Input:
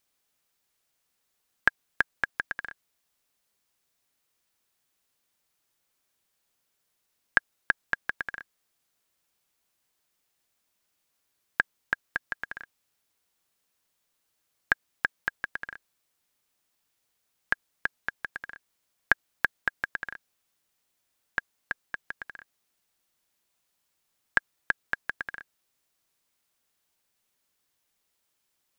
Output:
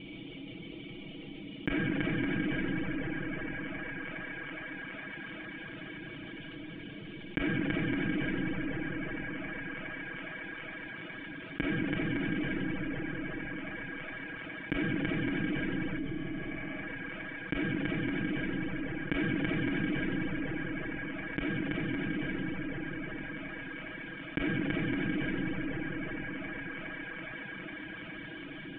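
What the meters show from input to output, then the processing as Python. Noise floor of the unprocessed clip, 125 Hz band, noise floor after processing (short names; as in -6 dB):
-77 dBFS, +20.0 dB, -45 dBFS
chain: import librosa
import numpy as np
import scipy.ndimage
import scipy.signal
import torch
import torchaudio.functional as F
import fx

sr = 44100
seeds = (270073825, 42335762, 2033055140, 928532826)

y = fx.formant_cascade(x, sr, vowel='i')
y = fx.peak_eq(y, sr, hz=83.0, db=10.5, octaves=2.3)
y = y + 0.93 * np.pad(y, (int(6.2 * sr / 1000.0), 0))[:len(y)]
y = fx.echo_wet_bandpass(y, sr, ms=414, feedback_pct=68, hz=1300.0, wet_db=-15.0)
y = fx.rev_freeverb(y, sr, rt60_s=2.8, hf_ratio=0.65, predelay_ms=10, drr_db=-7.5)
y = fx.dereverb_blind(y, sr, rt60_s=0.62)
y = fx.spec_repair(y, sr, seeds[0], start_s=16.0, length_s=0.75, low_hz=470.0, high_hz=2900.0, source='after')
y = fx.peak_eq(y, sr, hz=530.0, db=6.5, octaves=2.5)
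y = fx.env_flatten(y, sr, amount_pct=70)
y = F.gain(torch.from_numpy(y), 5.5).numpy()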